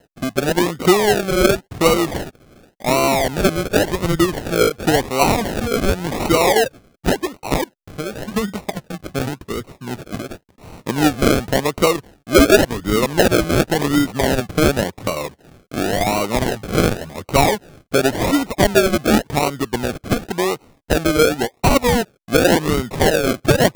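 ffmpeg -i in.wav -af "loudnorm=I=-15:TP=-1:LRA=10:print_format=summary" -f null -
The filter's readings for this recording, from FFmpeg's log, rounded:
Input Integrated:    -17.9 LUFS
Input True Peak:      -0.1 dBTP
Input LRA:             4.4 LU
Input Threshold:     -28.3 LUFS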